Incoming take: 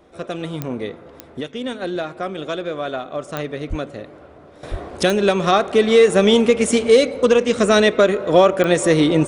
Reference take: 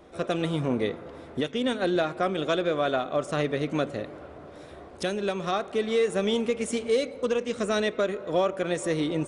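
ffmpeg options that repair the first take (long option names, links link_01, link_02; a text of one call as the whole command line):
ffmpeg -i in.wav -filter_complex "[0:a]adeclick=threshold=4,asplit=3[link_01][link_02][link_03];[link_01]afade=type=out:start_time=3.69:duration=0.02[link_04];[link_02]highpass=frequency=140:width=0.5412,highpass=frequency=140:width=1.3066,afade=type=in:start_time=3.69:duration=0.02,afade=type=out:start_time=3.81:duration=0.02[link_05];[link_03]afade=type=in:start_time=3.81:duration=0.02[link_06];[link_04][link_05][link_06]amix=inputs=3:normalize=0,asplit=3[link_07][link_08][link_09];[link_07]afade=type=out:start_time=4.7:duration=0.02[link_10];[link_08]highpass=frequency=140:width=0.5412,highpass=frequency=140:width=1.3066,afade=type=in:start_time=4.7:duration=0.02,afade=type=out:start_time=4.82:duration=0.02[link_11];[link_09]afade=type=in:start_time=4.82:duration=0.02[link_12];[link_10][link_11][link_12]amix=inputs=3:normalize=0,asetnsamples=nb_out_samples=441:pad=0,asendcmd='4.63 volume volume -12dB',volume=0dB" out.wav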